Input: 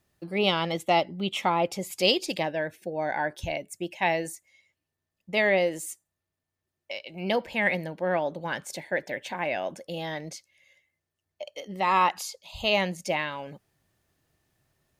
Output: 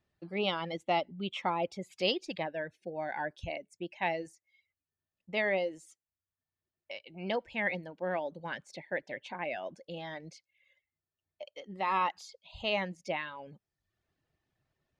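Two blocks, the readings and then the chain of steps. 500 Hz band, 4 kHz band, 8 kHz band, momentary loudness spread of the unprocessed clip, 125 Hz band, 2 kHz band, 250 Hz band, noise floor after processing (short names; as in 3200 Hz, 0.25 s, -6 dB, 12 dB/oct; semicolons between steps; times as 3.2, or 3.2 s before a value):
-7.5 dB, -8.5 dB, -17.5 dB, 15 LU, -8.0 dB, -7.5 dB, -7.5 dB, under -85 dBFS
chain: reverb removal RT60 0.66 s; LPF 4300 Hz 12 dB/oct; gain -6.5 dB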